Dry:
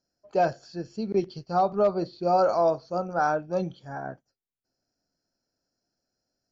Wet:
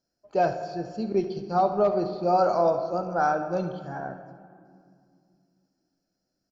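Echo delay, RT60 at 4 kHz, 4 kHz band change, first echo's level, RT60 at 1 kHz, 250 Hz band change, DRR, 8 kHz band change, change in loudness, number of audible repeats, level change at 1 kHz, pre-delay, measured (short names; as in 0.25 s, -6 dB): 71 ms, 1.3 s, -1.0 dB, -14.5 dB, 2.1 s, +1.0 dB, 7.0 dB, n/a, 0.0 dB, 1, +1.0 dB, 8 ms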